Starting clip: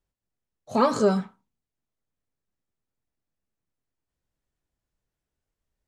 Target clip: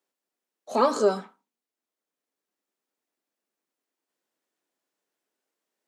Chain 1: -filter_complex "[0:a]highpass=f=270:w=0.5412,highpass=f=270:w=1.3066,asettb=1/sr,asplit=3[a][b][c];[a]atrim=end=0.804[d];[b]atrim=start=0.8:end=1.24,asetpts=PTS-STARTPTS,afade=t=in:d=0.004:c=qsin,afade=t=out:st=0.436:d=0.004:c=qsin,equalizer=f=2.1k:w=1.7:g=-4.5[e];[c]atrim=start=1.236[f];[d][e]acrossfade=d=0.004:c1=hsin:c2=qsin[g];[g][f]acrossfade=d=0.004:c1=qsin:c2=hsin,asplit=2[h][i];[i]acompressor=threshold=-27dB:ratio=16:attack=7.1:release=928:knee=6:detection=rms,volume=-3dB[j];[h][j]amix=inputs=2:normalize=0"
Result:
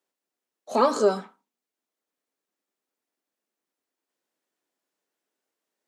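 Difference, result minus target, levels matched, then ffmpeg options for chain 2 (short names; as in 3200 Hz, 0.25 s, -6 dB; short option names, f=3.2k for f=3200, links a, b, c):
compressor: peak gain reduction -10.5 dB
-filter_complex "[0:a]highpass=f=270:w=0.5412,highpass=f=270:w=1.3066,asettb=1/sr,asplit=3[a][b][c];[a]atrim=end=0.804[d];[b]atrim=start=0.8:end=1.24,asetpts=PTS-STARTPTS,afade=t=in:d=0.004:c=qsin,afade=t=out:st=0.436:d=0.004:c=qsin,equalizer=f=2.1k:w=1.7:g=-4.5[e];[c]atrim=start=1.236[f];[d][e]acrossfade=d=0.004:c1=hsin:c2=qsin[g];[g][f]acrossfade=d=0.004:c1=qsin:c2=hsin,asplit=2[h][i];[i]acompressor=threshold=-38dB:ratio=16:attack=7.1:release=928:knee=6:detection=rms,volume=-3dB[j];[h][j]amix=inputs=2:normalize=0"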